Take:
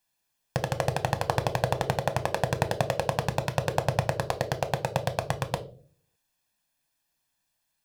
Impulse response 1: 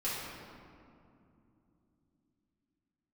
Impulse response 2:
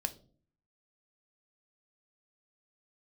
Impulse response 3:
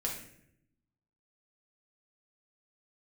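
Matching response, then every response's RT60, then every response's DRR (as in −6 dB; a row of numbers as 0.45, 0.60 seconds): 2; 2.7, 0.45, 0.70 seconds; −10.5, 9.0, −2.5 decibels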